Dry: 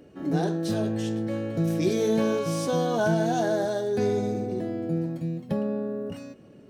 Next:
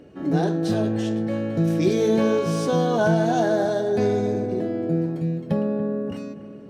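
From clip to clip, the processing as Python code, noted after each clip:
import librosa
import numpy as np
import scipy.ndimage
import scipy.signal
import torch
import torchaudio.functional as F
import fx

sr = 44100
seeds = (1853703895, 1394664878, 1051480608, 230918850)

y = fx.high_shelf(x, sr, hz=7300.0, db=-9.0)
y = fx.echo_bbd(y, sr, ms=286, stages=4096, feedback_pct=56, wet_db=-14.0)
y = y * librosa.db_to_amplitude(4.0)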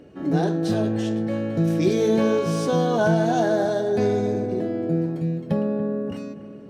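y = x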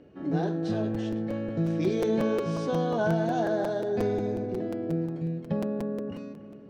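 y = fx.air_absorb(x, sr, metres=100.0)
y = fx.buffer_crackle(y, sr, first_s=0.94, period_s=0.18, block=256, kind='repeat')
y = y * librosa.db_to_amplitude(-6.0)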